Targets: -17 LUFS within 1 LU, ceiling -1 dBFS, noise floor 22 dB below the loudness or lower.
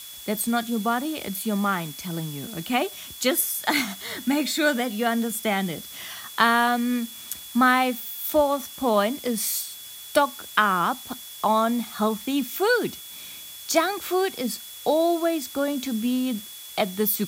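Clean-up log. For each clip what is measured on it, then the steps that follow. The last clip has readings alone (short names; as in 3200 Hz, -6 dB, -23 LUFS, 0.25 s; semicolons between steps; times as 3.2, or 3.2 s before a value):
steady tone 3400 Hz; tone level -43 dBFS; noise floor -41 dBFS; noise floor target -47 dBFS; loudness -24.5 LUFS; peak -5.0 dBFS; loudness target -17.0 LUFS
-> notch 3400 Hz, Q 30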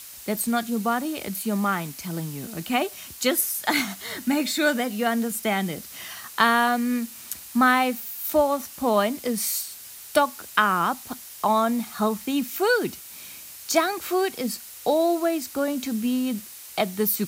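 steady tone none; noise floor -42 dBFS; noise floor target -47 dBFS
-> noise print and reduce 6 dB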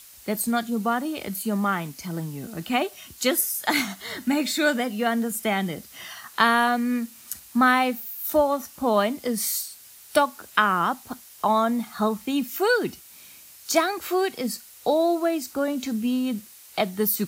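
noise floor -48 dBFS; loudness -24.5 LUFS; peak -5.5 dBFS; loudness target -17.0 LUFS
-> gain +7.5 dB; limiter -1 dBFS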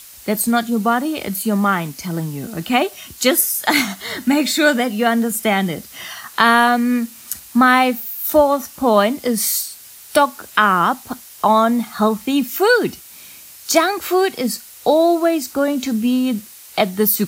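loudness -17.5 LUFS; peak -1.0 dBFS; noise floor -40 dBFS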